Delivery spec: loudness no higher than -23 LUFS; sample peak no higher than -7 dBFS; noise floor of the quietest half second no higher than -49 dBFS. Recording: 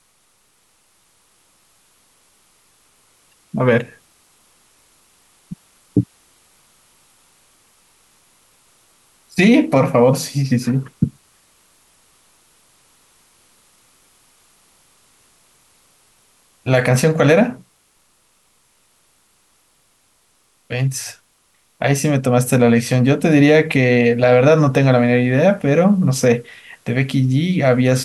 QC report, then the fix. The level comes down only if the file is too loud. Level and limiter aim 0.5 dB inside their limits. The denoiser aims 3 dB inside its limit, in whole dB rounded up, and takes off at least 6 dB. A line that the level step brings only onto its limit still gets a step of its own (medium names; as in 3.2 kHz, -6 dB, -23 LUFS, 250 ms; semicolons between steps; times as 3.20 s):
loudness -15.5 LUFS: fail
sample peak -3.5 dBFS: fail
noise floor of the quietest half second -60 dBFS: pass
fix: trim -8 dB